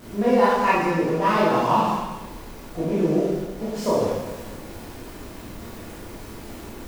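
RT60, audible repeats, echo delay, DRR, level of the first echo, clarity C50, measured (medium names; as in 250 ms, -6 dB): 1.2 s, no echo, no echo, -9.0 dB, no echo, -1.5 dB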